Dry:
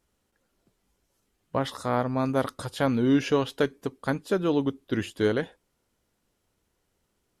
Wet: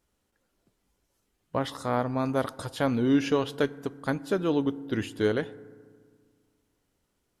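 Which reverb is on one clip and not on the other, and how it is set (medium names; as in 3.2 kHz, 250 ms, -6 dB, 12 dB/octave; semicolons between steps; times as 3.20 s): FDN reverb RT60 1.8 s, low-frequency decay 1.3×, high-frequency decay 0.4×, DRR 18 dB; trim -1.5 dB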